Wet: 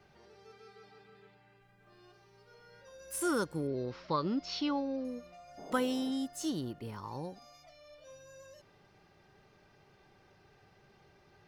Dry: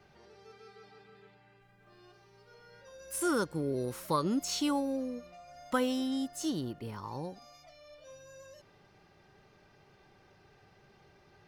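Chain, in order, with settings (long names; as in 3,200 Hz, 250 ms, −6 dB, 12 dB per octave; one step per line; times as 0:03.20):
0:03.67–0:05.05: elliptic low-pass filter 5,200 Hz, stop band 50 dB
0:05.57–0:06.10: noise in a band 150–740 Hz −47 dBFS
level −1.5 dB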